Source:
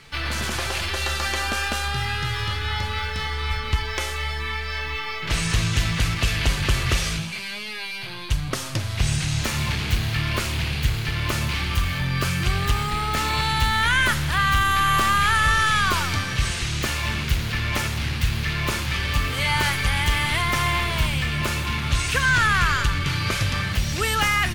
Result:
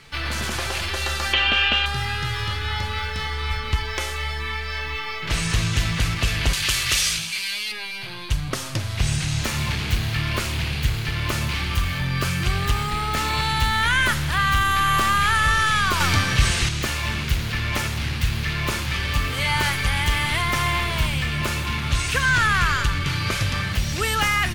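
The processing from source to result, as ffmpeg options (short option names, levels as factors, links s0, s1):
-filter_complex "[0:a]asettb=1/sr,asplit=3[s0][s1][s2];[s0]atrim=end=1.334[s3];[s1]atrim=start=1.33:end=1.86,asetpts=PTS-STARTPTS,afade=t=in:d=0.004:c=qsin,afade=t=out:st=0.526:d=0.004:c=qsin,lowpass=f=3000:t=q:w=5.9[s4];[s2]atrim=start=1.856[s5];[s3][s4]acrossfade=d=0.004:c1=hsin:c2=qsin[s6];[s6][s5]acrossfade=d=0.004:c1=qsin:c2=hsin,asettb=1/sr,asplit=3[s7][s8][s9];[s7]atrim=end=6.534[s10];[s8]atrim=start=6.53:end=7.72,asetpts=PTS-STARTPTS,afade=t=in:d=0.004:c=qsin,afade=t=out:st=1.186:d=0.004:c=qsin,tiltshelf=f=1500:g=-9.5[s11];[s9]atrim=start=7.716[s12];[s10][s11]acrossfade=d=0.004:c1=hsin:c2=qsin[s13];[s13][s12]acrossfade=d=0.004:c1=qsin:c2=hsin,asettb=1/sr,asplit=3[s14][s15][s16];[s14]atrim=end=16.004[s17];[s15]atrim=start=16:end=16.69,asetpts=PTS-STARTPTS,afade=t=in:d=0.004:c=qsin,afade=t=out:st=0.686:d=0.004:c=qsin,acontrast=28[s18];[s16]atrim=start=16.686[s19];[s17][s18]acrossfade=d=0.004:c1=hsin:c2=qsin[s20];[s20][s19]acrossfade=d=0.004:c1=qsin:c2=hsin"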